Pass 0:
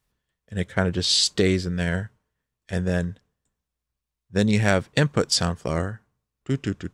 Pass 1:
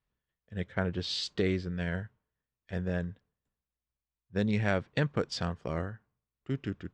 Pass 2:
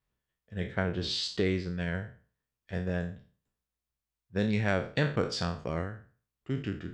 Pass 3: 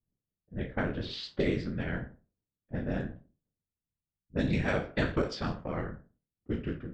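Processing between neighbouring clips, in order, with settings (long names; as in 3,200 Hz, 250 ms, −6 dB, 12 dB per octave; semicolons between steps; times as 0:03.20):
low-pass filter 3,500 Hz 12 dB per octave; level −8.5 dB
peak hold with a decay on every bin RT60 0.40 s
random phases in short frames; low-pass that shuts in the quiet parts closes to 400 Hz, open at −23.5 dBFS; level −1 dB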